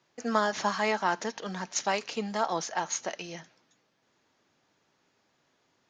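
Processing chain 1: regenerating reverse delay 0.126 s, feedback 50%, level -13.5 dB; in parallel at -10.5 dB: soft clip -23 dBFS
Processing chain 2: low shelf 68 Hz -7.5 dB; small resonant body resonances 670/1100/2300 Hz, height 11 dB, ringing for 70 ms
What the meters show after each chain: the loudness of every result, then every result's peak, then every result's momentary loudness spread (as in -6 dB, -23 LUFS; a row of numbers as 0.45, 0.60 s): -29.0, -28.5 LUFS; -11.5, -8.0 dBFS; 9, 11 LU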